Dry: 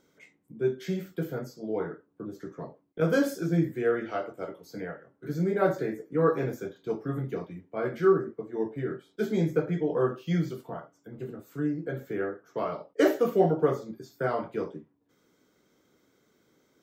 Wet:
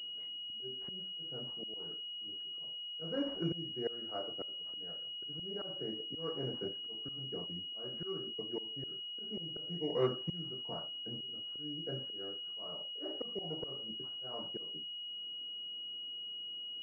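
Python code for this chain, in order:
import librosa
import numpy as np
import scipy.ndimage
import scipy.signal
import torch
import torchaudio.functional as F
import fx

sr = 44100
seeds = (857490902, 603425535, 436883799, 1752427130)

y = fx.auto_swell(x, sr, attack_ms=642.0)
y = fx.pwm(y, sr, carrier_hz=2900.0)
y = y * 10.0 ** (-2.5 / 20.0)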